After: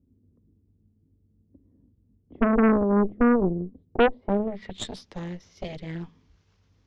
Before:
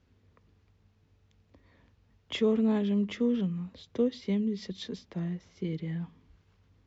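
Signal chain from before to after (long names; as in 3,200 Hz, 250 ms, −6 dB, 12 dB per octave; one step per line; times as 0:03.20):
low-pass filter sweep 280 Hz → 6,000 Hz, 0:03.87–0:05.04
harmonic generator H 6 −7 dB, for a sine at −12.5 dBFS
highs frequency-modulated by the lows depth 0.54 ms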